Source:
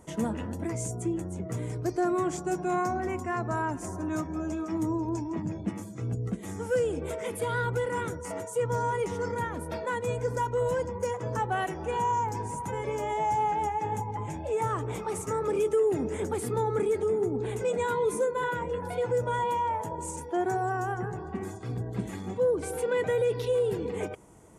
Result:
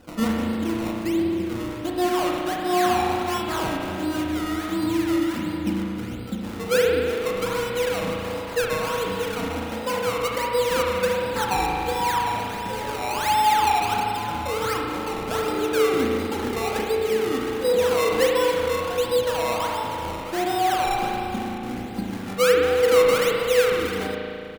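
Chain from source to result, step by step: comb 3.8 ms, depth 67%; decimation with a swept rate 19×, swing 100% 1.4 Hz; spring tank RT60 2.5 s, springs 36 ms, chirp 35 ms, DRR -1.5 dB; trim +1.5 dB

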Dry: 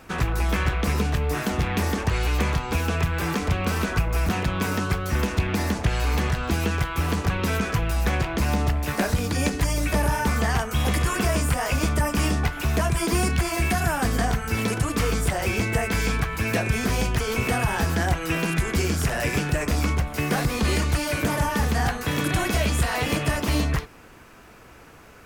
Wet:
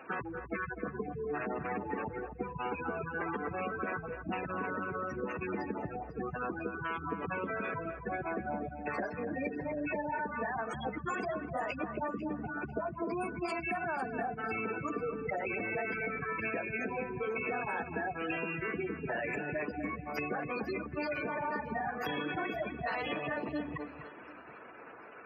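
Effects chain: 11.97–13.06 s: median filter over 15 samples; spectral gate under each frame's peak -15 dB strong; high-pass 340 Hz 12 dB/octave; compression, threshold -33 dBFS, peak gain reduction 10 dB; on a send: echo whose repeats swap between lows and highs 249 ms, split 2.3 kHz, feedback 54%, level -9 dB

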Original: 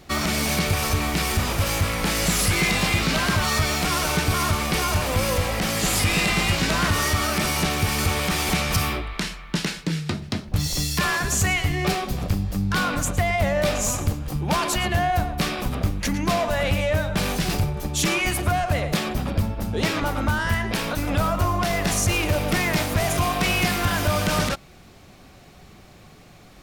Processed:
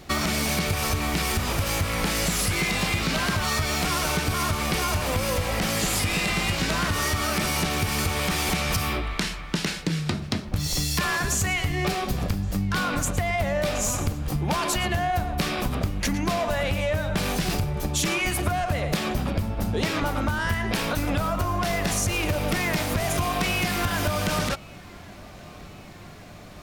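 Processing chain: compression, threshold -24 dBFS, peak gain reduction 8 dB; filtered feedback delay 1122 ms, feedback 77%, low-pass 3.8 kHz, level -23.5 dB; trim +2.5 dB

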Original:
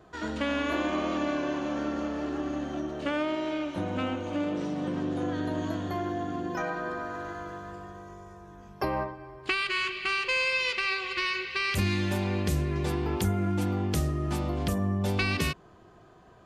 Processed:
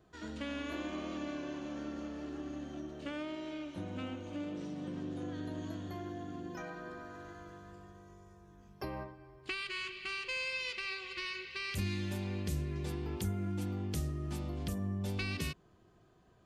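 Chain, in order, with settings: peaking EQ 930 Hz -7 dB 2.4 oct; trim -7.5 dB

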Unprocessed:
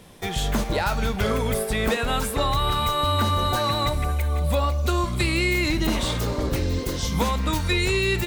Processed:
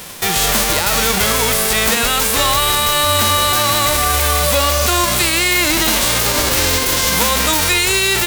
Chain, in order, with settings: formants flattened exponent 0.3; overload inside the chain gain 12.5 dB; loudness maximiser +20.5 dB; trim -5 dB

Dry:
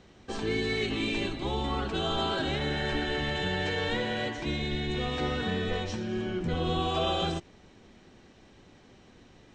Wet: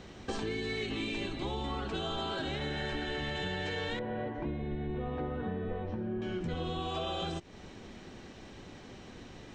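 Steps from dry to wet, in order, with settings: 3.99–6.22 s: low-pass 1.1 kHz 12 dB/octave; compression 6:1, threshold -40 dBFS, peak gain reduction 14.5 dB; trim +6.5 dB

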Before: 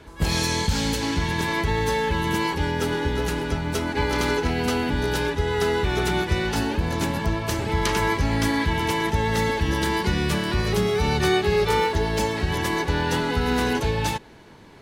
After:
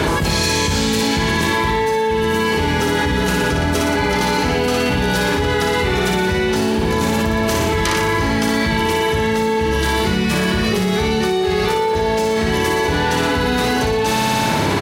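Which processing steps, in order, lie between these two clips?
high-pass 71 Hz; doubling 32 ms -12 dB; flutter echo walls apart 10.1 m, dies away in 0.99 s; level flattener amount 100%; trim -4 dB

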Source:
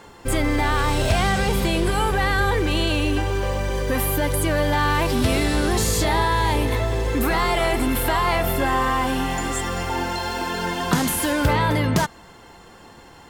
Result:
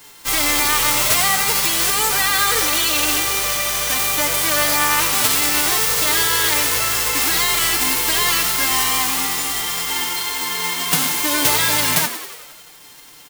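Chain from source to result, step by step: formants flattened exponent 0.1; comb 6.7 ms, depth 98%; on a send: frequency-shifting echo 91 ms, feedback 63%, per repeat +78 Hz, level -11 dB; on the sum: trim -1 dB

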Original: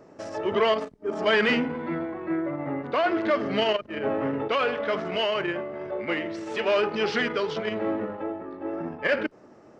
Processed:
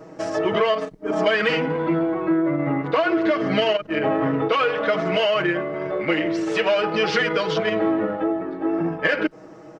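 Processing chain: comb 6.3 ms, depth 98%; compression 5:1, threshold -23 dBFS, peak gain reduction 9 dB; trim +6 dB

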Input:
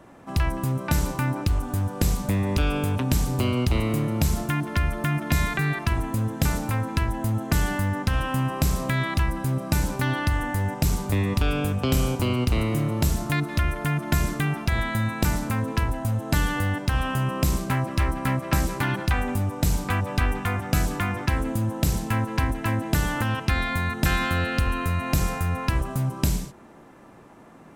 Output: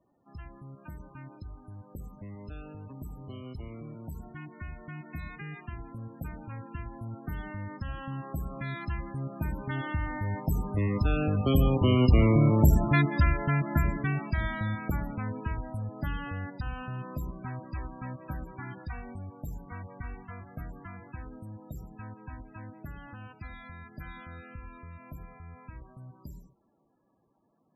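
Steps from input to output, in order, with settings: Doppler pass-by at 12.44 s, 11 m/s, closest 8 m; loudest bins only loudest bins 32; trim +3.5 dB

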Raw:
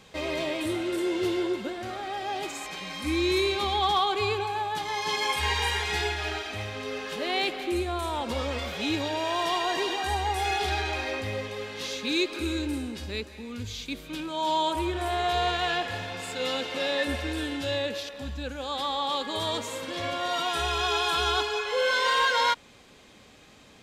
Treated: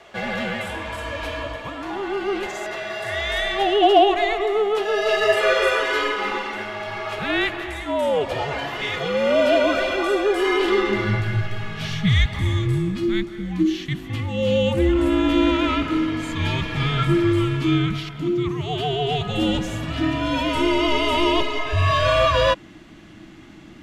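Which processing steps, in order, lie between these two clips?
tone controls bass +6 dB, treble -8 dB; high-pass sweep 1 kHz -> 88 Hz, 10.55–12.96 s; frequency shift -420 Hz; trim +6.5 dB

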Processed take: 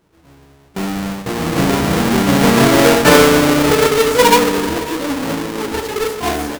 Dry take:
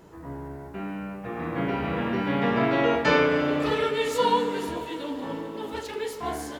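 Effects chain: square wave that keeps the level; gate with hold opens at -26 dBFS; trim +8 dB

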